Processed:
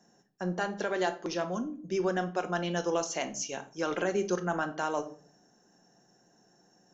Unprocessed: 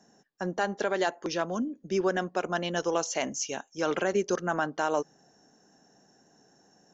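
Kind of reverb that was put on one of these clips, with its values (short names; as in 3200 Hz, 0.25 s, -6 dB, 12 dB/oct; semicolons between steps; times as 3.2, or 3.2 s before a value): shoebox room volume 430 m³, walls furnished, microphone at 0.89 m; gain -3.5 dB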